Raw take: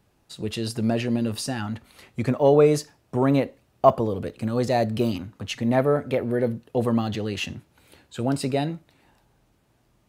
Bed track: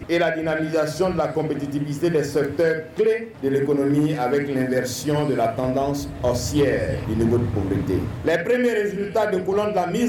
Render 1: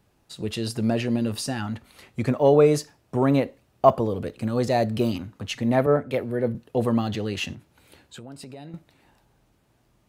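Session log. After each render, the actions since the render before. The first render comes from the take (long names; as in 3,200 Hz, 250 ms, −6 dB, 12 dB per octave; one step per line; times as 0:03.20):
0:05.86–0:06.55: multiband upward and downward expander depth 100%
0:07.53–0:08.74: downward compressor, threshold −38 dBFS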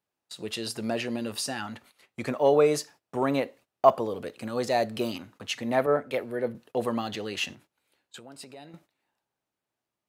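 noise gate −46 dBFS, range −17 dB
high-pass filter 560 Hz 6 dB per octave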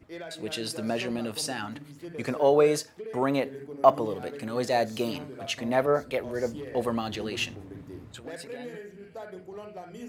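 mix in bed track −20.5 dB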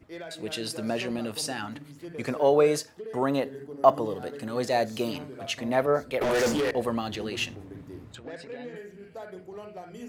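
0:02.94–0:04.49: notch filter 2,300 Hz, Q 5.1
0:06.21–0:06.71: mid-hump overdrive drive 31 dB, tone 7,600 Hz, clips at −17.5 dBFS
0:08.15–0:08.76: high-frequency loss of the air 100 metres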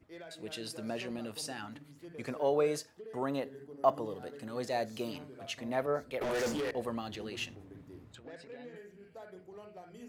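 level −8.5 dB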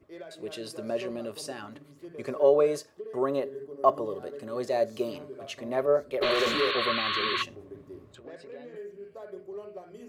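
0:06.22–0:07.43: sound drawn into the spectrogram noise 1,000–4,500 Hz −31 dBFS
hollow resonant body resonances 400/570/1,100 Hz, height 13 dB, ringing for 55 ms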